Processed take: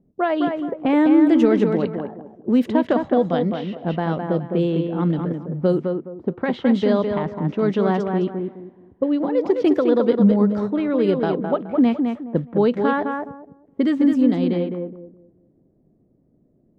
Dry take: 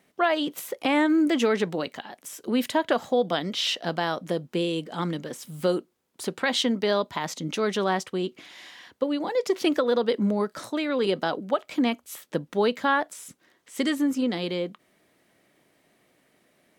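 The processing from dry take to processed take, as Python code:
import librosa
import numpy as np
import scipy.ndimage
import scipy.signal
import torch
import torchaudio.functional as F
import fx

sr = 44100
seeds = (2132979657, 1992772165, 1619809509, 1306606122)

y = fx.tilt_eq(x, sr, slope=-4.0)
y = fx.echo_tape(y, sr, ms=210, feedback_pct=31, wet_db=-4, lp_hz=4100.0, drive_db=6.0, wow_cents=9)
y = fx.env_lowpass(y, sr, base_hz=370.0, full_db=-13.0)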